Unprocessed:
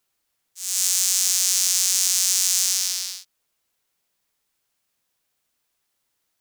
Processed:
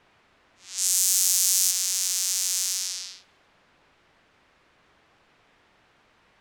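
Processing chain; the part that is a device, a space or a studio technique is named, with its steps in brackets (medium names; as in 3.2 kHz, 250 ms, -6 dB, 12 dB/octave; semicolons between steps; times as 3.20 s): cassette deck with a dynamic noise filter (white noise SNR 22 dB; level-controlled noise filter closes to 2 kHz, open at -16 dBFS); 0.78–1.71 s: treble shelf 7.9 kHz +10 dB; trim -5.5 dB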